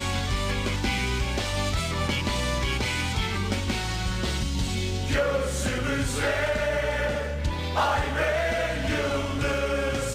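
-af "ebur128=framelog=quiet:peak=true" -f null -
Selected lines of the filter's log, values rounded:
Integrated loudness:
  I:         -26.5 LUFS
  Threshold: -36.5 LUFS
Loudness range:
  LRA:         1.1 LU
  Threshold: -46.5 LUFS
  LRA low:   -27.1 LUFS
  LRA high:  -25.9 LUFS
True peak:
  Peak:      -13.7 dBFS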